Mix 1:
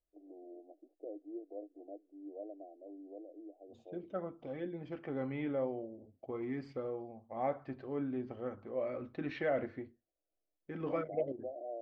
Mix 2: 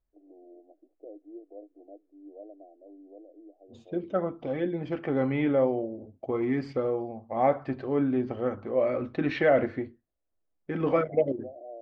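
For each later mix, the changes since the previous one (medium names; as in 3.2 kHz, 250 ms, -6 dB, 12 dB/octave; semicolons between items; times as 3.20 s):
second voice +11.5 dB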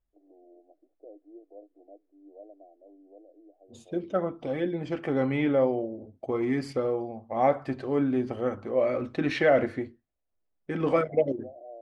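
first voice: add tilt EQ +3 dB/octave; master: remove distance through air 180 m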